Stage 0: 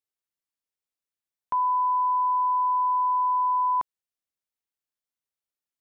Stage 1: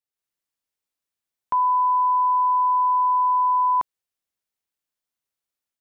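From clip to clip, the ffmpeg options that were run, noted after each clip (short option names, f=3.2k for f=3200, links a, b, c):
-af "dynaudnorm=f=110:g=3:m=6.5dB,volume=-2.5dB"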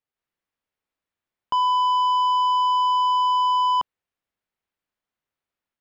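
-af "bass=f=250:g=1,treble=f=4k:g=-15,asoftclip=type=tanh:threshold=-23dB,volume=5dB"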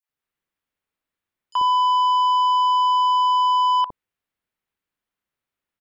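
-filter_complex "[0:a]acrossover=split=660|5800[a][b][c];[b]adelay=30[d];[a]adelay=90[e];[e][d][c]amix=inputs=3:normalize=0,volume=2dB"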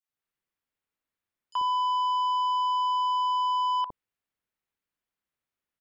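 -af "alimiter=limit=-18.5dB:level=0:latency=1:release=13,volume=-4.5dB"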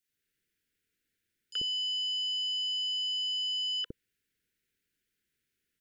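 -af "asuperstop=centerf=840:order=12:qfactor=0.88,volume=8dB"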